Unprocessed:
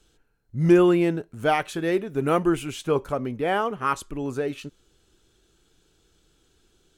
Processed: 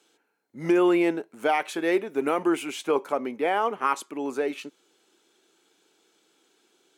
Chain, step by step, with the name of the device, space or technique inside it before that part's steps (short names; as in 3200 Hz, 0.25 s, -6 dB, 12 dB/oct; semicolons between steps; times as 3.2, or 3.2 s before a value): laptop speaker (HPF 250 Hz 24 dB/oct; bell 870 Hz +5.5 dB 0.56 oct; bell 2200 Hz +6 dB 0.31 oct; limiter -13 dBFS, peak gain reduction 6.5 dB)